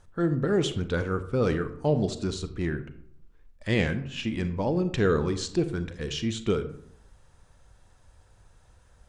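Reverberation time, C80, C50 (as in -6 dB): 0.65 s, 15.0 dB, 12.0 dB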